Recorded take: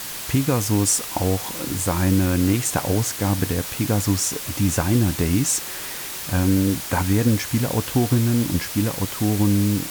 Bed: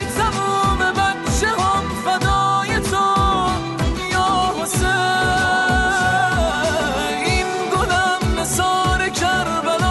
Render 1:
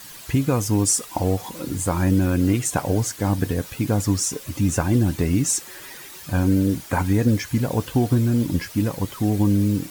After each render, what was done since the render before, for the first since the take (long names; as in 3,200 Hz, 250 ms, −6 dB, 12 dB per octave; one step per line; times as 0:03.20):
broadband denoise 11 dB, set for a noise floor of −32 dBFS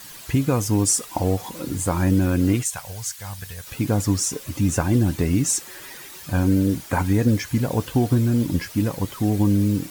0:02.63–0:03.67: guitar amp tone stack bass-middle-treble 10-0-10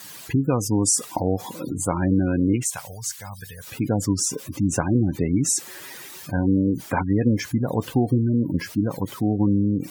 gate on every frequency bin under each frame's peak −25 dB strong
high-pass filter 110 Hz 12 dB per octave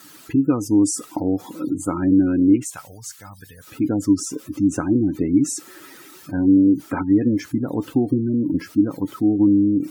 tuned comb filter 880 Hz, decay 0.26 s, mix 50%
hollow resonant body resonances 300/1,300 Hz, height 15 dB, ringing for 40 ms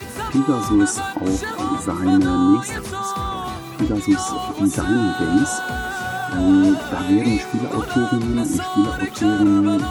mix in bed −9 dB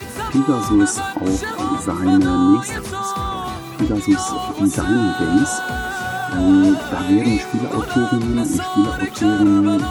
level +1.5 dB